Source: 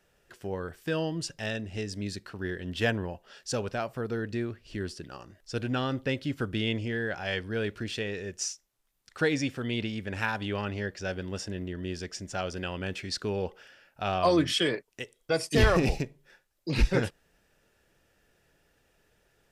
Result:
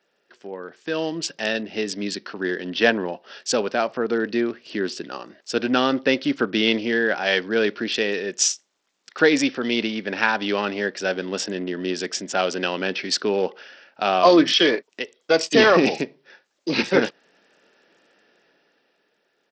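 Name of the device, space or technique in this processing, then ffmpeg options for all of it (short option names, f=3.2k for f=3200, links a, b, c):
Bluetooth headset: -filter_complex "[0:a]asettb=1/sr,asplit=3[a][b][c];[a]atrim=end=8.104[d];[b]atrim=start=8.1:end=8.52,asetpts=PTS-STARTPTS,afade=t=in:d=0.004:c=qsin,afade=t=out:st=0.416:d=0.004:c=qsin,highshelf=f=3.7k:g=3.5[e];[c]atrim=start=8.516[f];[d][e]acrossfade=d=0.004:c1=hsin:c2=qsin[g];[g][f]acrossfade=d=0.004:c1=qsin:c2=hsin,highpass=f=220:w=0.5412,highpass=f=220:w=1.3066,dynaudnorm=f=110:g=21:m=11.5dB,aresample=16000,aresample=44100" -ar 44100 -c:a sbc -b:a 64k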